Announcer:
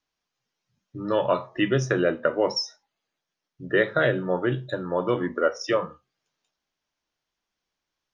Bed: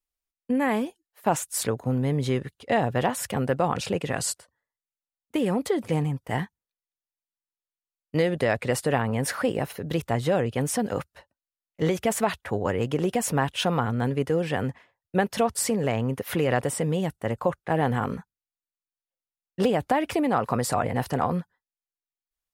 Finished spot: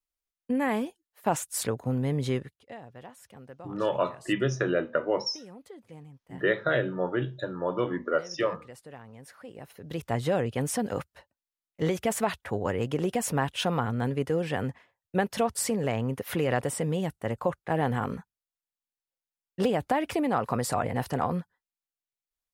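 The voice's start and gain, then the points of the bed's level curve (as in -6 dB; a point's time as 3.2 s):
2.70 s, -4.0 dB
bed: 2.36 s -3 dB
2.78 s -22 dB
9.4 s -22 dB
10.14 s -3 dB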